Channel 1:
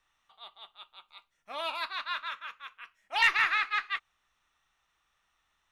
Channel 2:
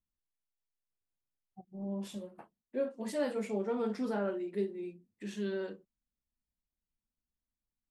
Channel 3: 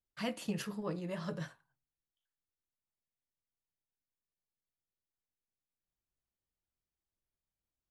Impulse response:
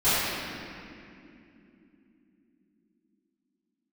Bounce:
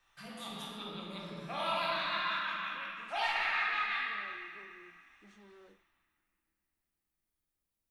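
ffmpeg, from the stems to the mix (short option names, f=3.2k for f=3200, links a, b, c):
-filter_complex "[0:a]acompressor=threshold=-33dB:ratio=6,volume=0.5dB,asplit=2[a][b];[b]volume=-14dB[c];[1:a]asoftclip=type=hard:threshold=-39dB,volume=-16.5dB[d];[2:a]highshelf=f=9.2k:g=11.5,acompressor=threshold=-46dB:ratio=6,volume=-7.5dB,asplit=2[e][f];[f]volume=-9dB[g];[a][d]amix=inputs=2:normalize=0,highpass=130,lowpass=7.4k,acompressor=threshold=-42dB:ratio=6,volume=0dB[h];[3:a]atrim=start_sample=2205[i];[c][g]amix=inputs=2:normalize=0[j];[j][i]afir=irnorm=-1:irlink=0[k];[e][h][k]amix=inputs=3:normalize=0,equalizer=f=9.5k:t=o:w=0.22:g=4.5"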